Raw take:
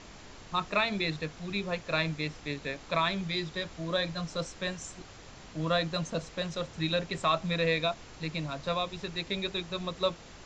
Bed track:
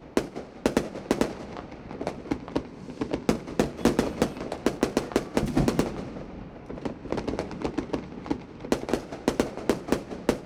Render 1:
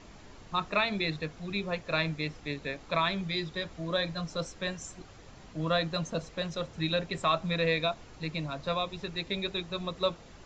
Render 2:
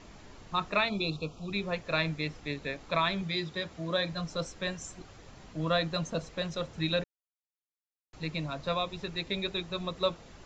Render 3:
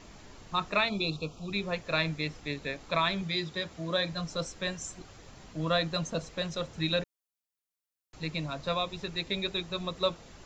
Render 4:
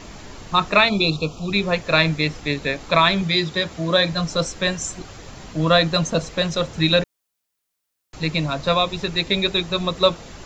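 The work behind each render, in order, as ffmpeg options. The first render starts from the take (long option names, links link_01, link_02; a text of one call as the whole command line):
ffmpeg -i in.wav -af "afftdn=noise_reduction=6:noise_floor=-50" out.wav
ffmpeg -i in.wav -filter_complex "[0:a]asplit=3[link_01][link_02][link_03];[link_01]afade=type=out:start_time=0.88:duration=0.02[link_04];[link_02]asuperstop=centerf=1800:order=12:qfactor=1.8,afade=type=in:start_time=0.88:duration=0.02,afade=type=out:start_time=1.51:duration=0.02[link_05];[link_03]afade=type=in:start_time=1.51:duration=0.02[link_06];[link_04][link_05][link_06]amix=inputs=3:normalize=0,asettb=1/sr,asplit=3[link_07][link_08][link_09];[link_07]atrim=end=3.224[link_10];[link_08]atrim=start=3.22:end=4.13,asetpts=PTS-STARTPTS,afade=type=in:duration=0.004:curve=qsin,afade=type=out:start_time=0.906:duration=0.004:curve=qsin,highpass=71[link_11];[link_09]atrim=start=4.126[link_12];[link_10][link_11]acrossfade=duration=0.004:curve1=hsin:curve2=qsin[link_13];[link_13][link_12]acrossfade=duration=0.004:curve1=qsin:curve2=hsin,asplit=3[link_14][link_15][link_16];[link_14]atrim=end=7.04,asetpts=PTS-STARTPTS,afade=type=out:start_time=7.036:duration=0.004:curve=hsin[link_17];[link_15]atrim=start=7.04:end=8.13,asetpts=PTS-STARTPTS,volume=0[link_18];[link_16]atrim=start=8.13,asetpts=PTS-STARTPTS,afade=type=in:duration=0.004:curve=hsin[link_19];[link_17][link_18][link_19]concat=n=3:v=0:a=1" out.wav
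ffmpeg -i in.wav -af "highshelf=frequency=5700:gain=6" out.wav
ffmpeg -i in.wav -af "volume=12dB" out.wav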